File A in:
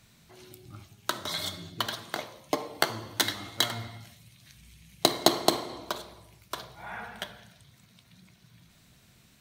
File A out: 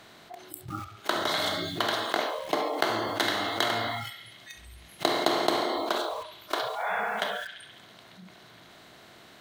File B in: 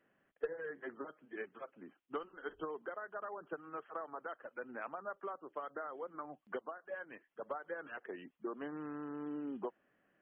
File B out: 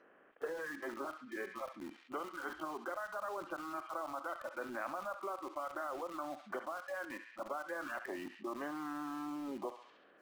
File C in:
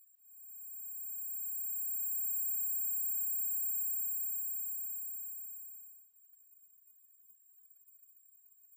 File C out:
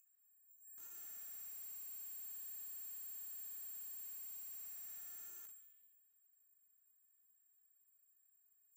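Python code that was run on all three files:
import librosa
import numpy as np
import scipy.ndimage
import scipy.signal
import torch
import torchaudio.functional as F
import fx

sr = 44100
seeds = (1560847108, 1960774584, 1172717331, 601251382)

p1 = fx.bin_compress(x, sr, power=0.6)
p2 = fx.bass_treble(p1, sr, bass_db=-9, treble_db=-11)
p3 = fx.noise_reduce_blind(p2, sr, reduce_db=28)
p4 = fx.quant_dither(p3, sr, seeds[0], bits=8, dither='none')
p5 = p3 + (p4 * librosa.db_to_amplitude(-6.0))
p6 = fx.echo_banded(p5, sr, ms=68, feedback_pct=62, hz=2800.0, wet_db=-15)
p7 = fx.env_flatten(p6, sr, amount_pct=50)
y = p7 * librosa.db_to_amplitude(-7.5)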